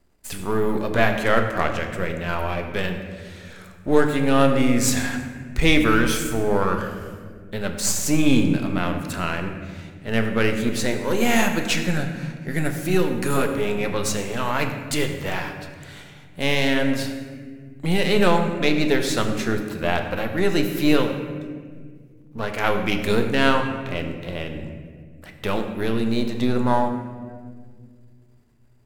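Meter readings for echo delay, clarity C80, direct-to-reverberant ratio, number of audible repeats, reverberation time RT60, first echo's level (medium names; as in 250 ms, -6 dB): no echo, 8.0 dB, 4.5 dB, no echo, 1.8 s, no echo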